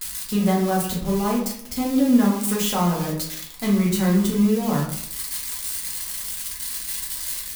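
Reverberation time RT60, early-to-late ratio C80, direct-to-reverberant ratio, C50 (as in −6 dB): 0.70 s, 8.5 dB, −4.5 dB, 4.5 dB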